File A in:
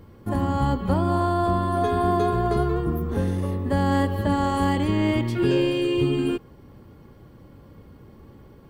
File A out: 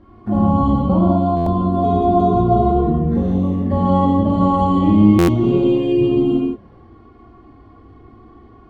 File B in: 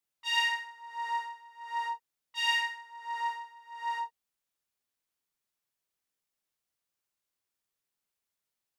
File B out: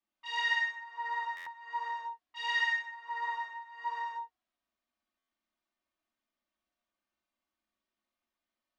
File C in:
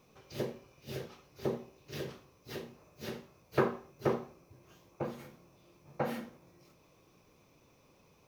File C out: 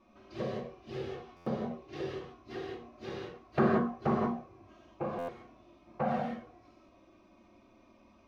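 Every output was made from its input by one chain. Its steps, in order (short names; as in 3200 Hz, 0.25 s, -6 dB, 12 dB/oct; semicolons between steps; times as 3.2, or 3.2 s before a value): LPF 3500 Hz 12 dB/oct; small resonant body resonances 210/720/1100 Hz, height 10 dB, ringing for 40 ms; dynamic EQ 2600 Hz, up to -6 dB, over -44 dBFS, Q 1.3; envelope flanger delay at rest 3.3 ms, full sweep at -17.5 dBFS; non-linear reverb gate 0.21 s flat, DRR -3 dB; stuck buffer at 1.36/5.18, samples 512, times 8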